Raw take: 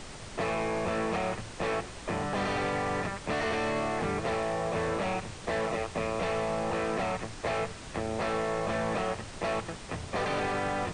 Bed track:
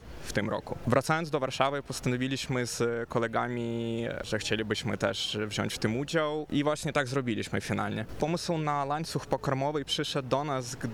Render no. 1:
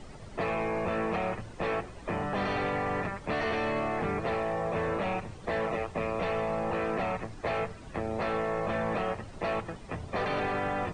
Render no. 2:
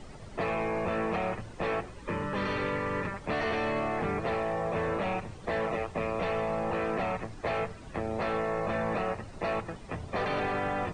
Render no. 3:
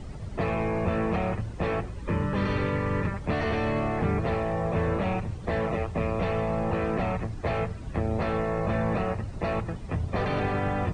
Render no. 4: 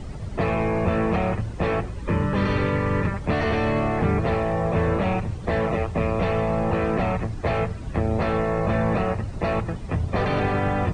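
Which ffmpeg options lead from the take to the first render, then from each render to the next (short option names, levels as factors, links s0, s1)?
-af "afftdn=nr=12:nf=-44"
-filter_complex "[0:a]asettb=1/sr,asplit=3[s0][s1][s2];[s0]atrim=end=1.944[s3];[s1]atrim=start=1.94:end=3.14,asetpts=PTS-STARTPTS,afade=t=in:d=0.004:c=qsin,afade=t=out:st=1.196:d=0.004:c=qsin,asuperstop=centerf=710:order=8:qfactor=3.6[s4];[s2]atrim=start=3.136[s5];[s3][s4]acrossfade=d=0.004:c1=hsin:c2=qsin[s6];[s6][s5]acrossfade=d=0.004:c1=qsin:c2=hsin,asettb=1/sr,asplit=3[s7][s8][s9];[s7]atrim=end=8.394[s10];[s8]atrim=start=8.39:end=9.71,asetpts=PTS-STARTPTS,afade=t=in:d=0.004:c=qsin,afade=t=out:st=1.316:d=0.004:c=qsin,bandreject=f=3200:w=12[s11];[s9]atrim=start=9.706[s12];[s10][s11]acrossfade=d=0.004:c1=hsin:c2=qsin[s13];[s13][s12]acrossfade=d=0.004:c1=qsin:c2=hsin"
-af "equalizer=f=64:w=0.33:g=13"
-af "volume=1.68"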